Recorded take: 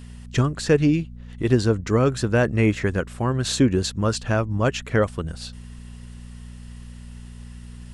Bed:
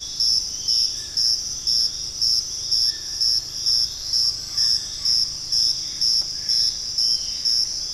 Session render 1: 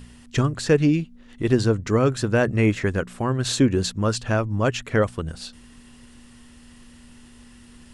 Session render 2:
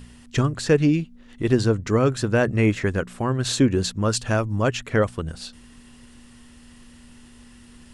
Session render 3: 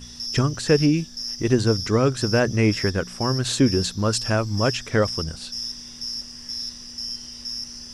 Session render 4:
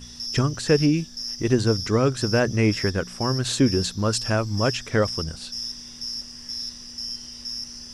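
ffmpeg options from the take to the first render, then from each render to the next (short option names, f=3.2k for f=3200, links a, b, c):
-af "bandreject=f=60:t=h:w=4,bandreject=f=120:t=h:w=4,bandreject=f=180:t=h:w=4"
-filter_complex "[0:a]asettb=1/sr,asplit=3[a][b][c];[a]atrim=end=4.134[d];[b]atrim=start=4.13:end=4.62,asetpts=PTS-STARTPTS,afade=t=in:d=0.004:c=qsin,afade=t=out:st=0.486:d=0.004:c=qsin,highshelf=f=7.5k:g=11[e];[c]atrim=start=4.616[f];[d][e]acrossfade=d=0.004:c1=hsin:c2=qsin[g];[g][f]acrossfade=d=0.004:c1=qsin:c2=hsin"
-filter_complex "[1:a]volume=-11.5dB[a];[0:a][a]amix=inputs=2:normalize=0"
-af "volume=-1dB"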